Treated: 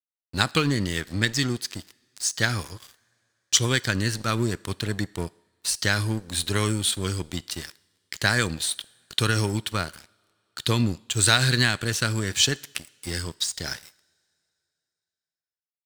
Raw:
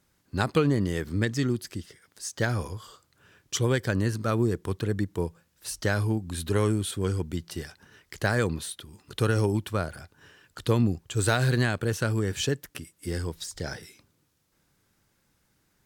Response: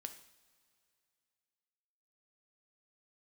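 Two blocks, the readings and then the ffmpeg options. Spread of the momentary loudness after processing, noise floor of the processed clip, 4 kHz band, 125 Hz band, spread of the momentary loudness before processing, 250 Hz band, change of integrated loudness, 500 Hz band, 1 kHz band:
14 LU, below −85 dBFS, +12.0 dB, 0.0 dB, 14 LU, −0.5 dB, +3.5 dB, −3.0 dB, +3.0 dB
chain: -filter_complex "[0:a]equalizer=frequency=500:width_type=o:width=1:gain=-6,equalizer=frequency=2000:width_type=o:width=1:gain=4,equalizer=frequency=4000:width_type=o:width=1:gain=9,equalizer=frequency=8000:width_type=o:width=1:gain=7,aeval=exprs='sgn(val(0))*max(abs(val(0))-0.0112,0)':channel_layout=same,asplit=2[link_01][link_02];[1:a]atrim=start_sample=2205,asetrate=41454,aresample=44100,lowshelf=frequency=290:gain=-10.5[link_03];[link_02][link_03]afir=irnorm=-1:irlink=0,volume=-6dB[link_04];[link_01][link_04]amix=inputs=2:normalize=0,volume=1dB"

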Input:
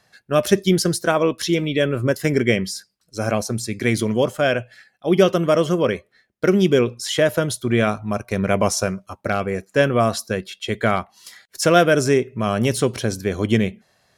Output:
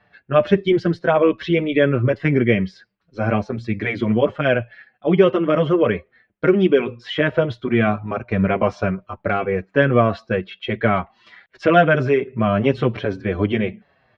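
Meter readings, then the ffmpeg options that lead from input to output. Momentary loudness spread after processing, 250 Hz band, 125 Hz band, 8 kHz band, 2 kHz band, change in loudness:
9 LU, +1.0 dB, +1.0 dB, below −25 dB, +1.5 dB, +0.5 dB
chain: -filter_complex "[0:a]asplit=2[link_01][link_02];[link_02]alimiter=limit=-11dB:level=0:latency=1:release=212,volume=-0.5dB[link_03];[link_01][link_03]amix=inputs=2:normalize=0,lowpass=frequency=2900:width=0.5412,lowpass=frequency=2900:width=1.3066,asplit=2[link_04][link_05];[link_05]adelay=6.3,afreqshift=-2.4[link_06];[link_04][link_06]amix=inputs=2:normalize=1"

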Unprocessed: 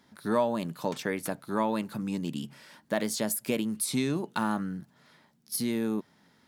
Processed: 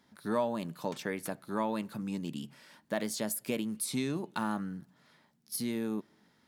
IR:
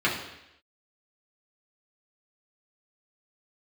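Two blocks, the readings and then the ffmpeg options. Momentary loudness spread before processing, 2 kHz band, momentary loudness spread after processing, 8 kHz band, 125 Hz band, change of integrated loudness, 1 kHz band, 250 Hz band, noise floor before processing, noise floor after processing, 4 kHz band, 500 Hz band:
8 LU, −4.5 dB, 7 LU, −4.5 dB, −4.5 dB, −4.5 dB, −4.5 dB, −4.5 dB, −65 dBFS, −69 dBFS, −4.5 dB, −4.5 dB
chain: -filter_complex "[0:a]asplit=2[link_01][link_02];[1:a]atrim=start_sample=2205[link_03];[link_02][link_03]afir=irnorm=-1:irlink=0,volume=-36.5dB[link_04];[link_01][link_04]amix=inputs=2:normalize=0,volume=-4.5dB"

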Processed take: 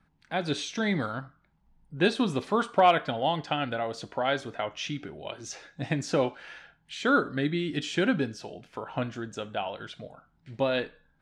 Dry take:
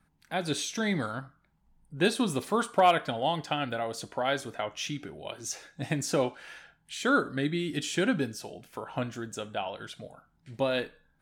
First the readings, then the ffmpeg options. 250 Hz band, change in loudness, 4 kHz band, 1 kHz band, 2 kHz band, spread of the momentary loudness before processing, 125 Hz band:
+1.5 dB, +1.5 dB, +0.5 dB, +1.5 dB, +1.5 dB, 16 LU, +1.5 dB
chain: -af "lowpass=4800,volume=1.5dB"

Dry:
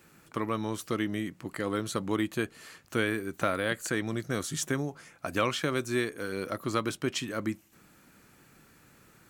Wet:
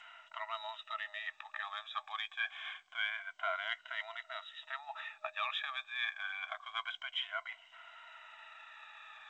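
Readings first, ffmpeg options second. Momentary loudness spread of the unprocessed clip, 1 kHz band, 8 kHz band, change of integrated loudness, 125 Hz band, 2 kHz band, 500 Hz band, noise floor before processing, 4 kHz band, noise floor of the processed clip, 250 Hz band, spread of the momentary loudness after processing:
7 LU, −5.0 dB, below −30 dB, −8.0 dB, below −40 dB, −3.0 dB, −18.5 dB, −60 dBFS, −1.5 dB, −65 dBFS, below −40 dB, 15 LU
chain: -af "afftfilt=real='re*pow(10,15/40*sin(2*PI*(1.9*log(max(b,1)*sr/1024/100)/log(2)-(-0.26)*(pts-256)/sr)))':imag='im*pow(10,15/40*sin(2*PI*(1.9*log(max(b,1)*sr/1024/100)/log(2)-(-0.26)*(pts-256)/sr)))':win_size=1024:overlap=0.75,crystalizer=i=3:c=0,areverse,acompressor=threshold=-36dB:ratio=8,areverse,afftfilt=real='re*between(b*sr/4096,620,3900)':imag='im*between(b*sr/4096,620,3900)':win_size=4096:overlap=0.75,volume=4.5dB" -ar 16000 -c:a g722

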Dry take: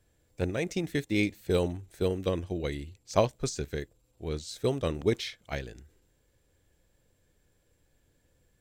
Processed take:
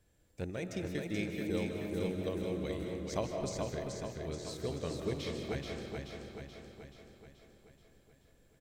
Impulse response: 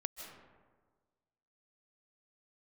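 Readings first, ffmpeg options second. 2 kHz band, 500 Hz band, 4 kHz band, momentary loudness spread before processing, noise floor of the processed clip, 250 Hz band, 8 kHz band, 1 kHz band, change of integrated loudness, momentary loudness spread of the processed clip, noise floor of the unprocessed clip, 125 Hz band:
−7.0 dB, −6.5 dB, −6.5 dB, 10 LU, −67 dBFS, −5.0 dB, −5.5 dB, −7.5 dB, −7.0 dB, 15 LU, −71 dBFS, −6.0 dB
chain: -filter_complex "[0:a]equalizer=frequency=190:width=5.5:gain=4.5,acompressor=threshold=-46dB:ratio=1.5,aecho=1:1:430|860|1290|1720|2150|2580|3010|3440:0.631|0.353|0.198|0.111|0.0621|0.0347|0.0195|0.0109[link_01];[1:a]atrim=start_sample=2205[link_02];[link_01][link_02]afir=irnorm=-1:irlink=0"

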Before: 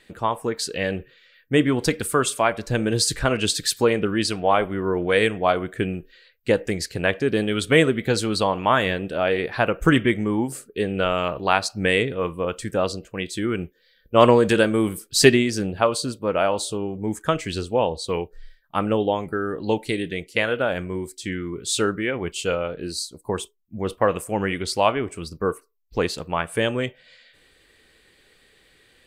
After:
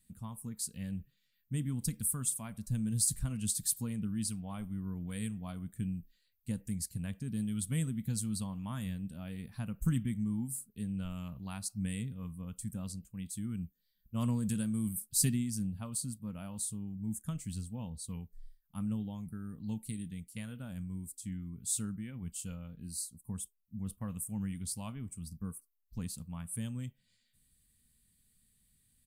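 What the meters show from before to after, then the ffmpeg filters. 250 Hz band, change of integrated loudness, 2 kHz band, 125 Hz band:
−12.0 dB, −14.5 dB, −29.0 dB, −7.5 dB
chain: -af "firequalizer=gain_entry='entry(220,0);entry(350,-26);entry(560,-26);entry(1000,-20);entry(1600,-23);entry(9600,7)':delay=0.05:min_phase=1,volume=-7.5dB"

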